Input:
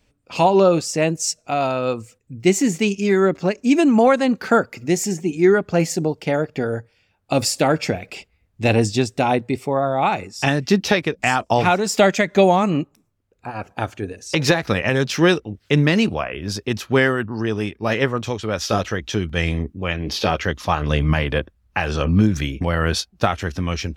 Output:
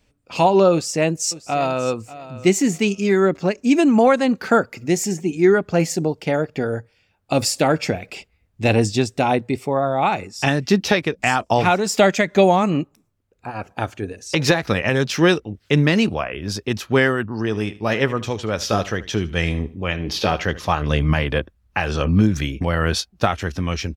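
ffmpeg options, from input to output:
ffmpeg -i in.wav -filter_complex "[0:a]asplit=2[link_01][link_02];[link_02]afade=type=in:start_time=0.72:duration=0.01,afade=type=out:start_time=1.89:duration=0.01,aecho=0:1:590|1180:0.149624|0.0224435[link_03];[link_01][link_03]amix=inputs=2:normalize=0,asettb=1/sr,asplit=3[link_04][link_05][link_06];[link_04]atrim=end=17.334[link_07];[link_05]atrim=start=17.33:end=20.73,asetpts=PTS-STARTPTS,afade=type=in:duration=0.004:curve=qsin,afade=type=out:start_time=3.396:duration=0.004:curve=qsin,aecho=1:1:77|154|231:0.133|0.0387|0.0112,atrim=end_sample=149940[link_08];[link_06]atrim=start=20.726[link_09];[link_07][link_08]acrossfade=duration=0.004:curve1=hsin:curve2=qsin[link_10];[link_10][link_09]acrossfade=duration=0.004:curve1=qsin:curve2=hsin" out.wav

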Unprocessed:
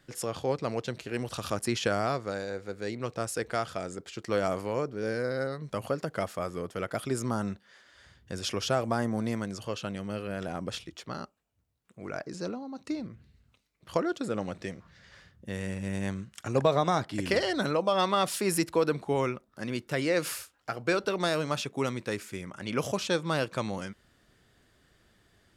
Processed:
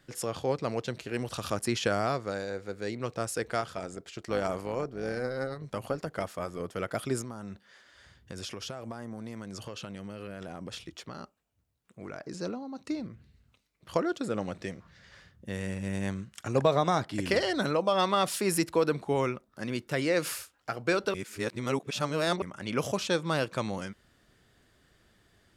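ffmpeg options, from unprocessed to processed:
ffmpeg -i in.wav -filter_complex "[0:a]asettb=1/sr,asplit=3[link_01][link_02][link_03];[link_01]atrim=end=3.604[link_04];[link_02]atrim=start=3.6:end=6.6,asetpts=PTS-STARTPTS,afade=type=in:duration=0.004:curve=qsin,afade=type=out:start_time=2.996:duration=0.004:curve=qsin,tremolo=f=260:d=0.462[link_05];[link_03]atrim=start=6.596[link_06];[link_04][link_05]acrossfade=duration=0.004:curve1=hsin:curve2=qsin[link_07];[link_07][link_06]acrossfade=duration=0.004:curve1=qsin:curve2=hsin,asettb=1/sr,asplit=3[link_08][link_09][link_10];[link_08]atrim=end=7.214[link_11];[link_09]atrim=start=7.21:end=12.29,asetpts=PTS-STARTPTS,afade=type=in:duration=0.004:curve=qsin,afade=type=out:start_time=5.076:duration=0.004:curve=qsin,acompressor=threshold=-35dB:ratio=8:attack=3.2:release=140:knee=1:detection=peak[link_12];[link_10]atrim=start=12.286[link_13];[link_11][link_12]acrossfade=duration=0.004:curve1=hsin:curve2=qsin[link_14];[link_14][link_13]acrossfade=duration=0.004:curve1=qsin:curve2=hsin,asplit=3[link_15][link_16][link_17];[link_15]atrim=end=21.142[link_18];[link_16]atrim=start=21.138:end=22.422,asetpts=PTS-STARTPTS,areverse[link_19];[link_17]atrim=start=22.418[link_20];[link_18][link_19]acrossfade=duration=0.004:curve1=hsin:curve2=hsin[link_21];[link_21][link_20]acrossfade=duration=0.004:curve1=hsin:curve2=hsin" out.wav

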